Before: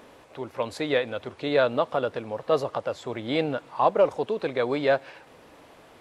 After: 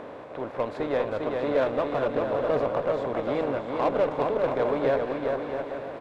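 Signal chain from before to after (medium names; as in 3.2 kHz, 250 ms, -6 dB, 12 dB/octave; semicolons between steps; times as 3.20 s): spectral levelling over time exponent 0.6; low-pass 1.1 kHz 6 dB/octave; band-stop 830 Hz, Q 27; in parallel at -6 dB: hard clipper -18 dBFS, distortion -13 dB; on the sum: bouncing-ball echo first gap 400 ms, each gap 0.65×, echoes 5; Chebyshev shaper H 6 -25 dB, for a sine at -5.5 dBFS; trim -7.5 dB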